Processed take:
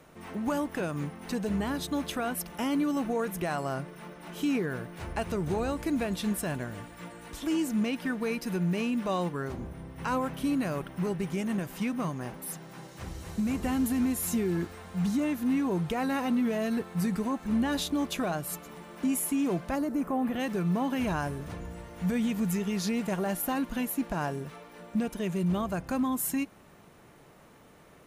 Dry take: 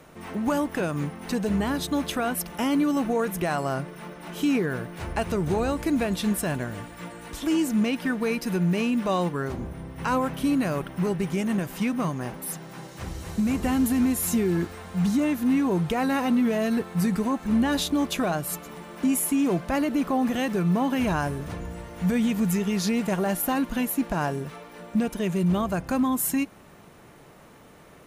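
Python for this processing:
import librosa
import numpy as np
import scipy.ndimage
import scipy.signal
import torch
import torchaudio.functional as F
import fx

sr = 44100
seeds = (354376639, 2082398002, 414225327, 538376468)

y = fx.peak_eq(x, sr, hz=fx.line((19.74, 2200.0), (20.39, 7300.0)), db=-14.5, octaves=1.1, at=(19.74, 20.39), fade=0.02)
y = y * 10.0 ** (-5.0 / 20.0)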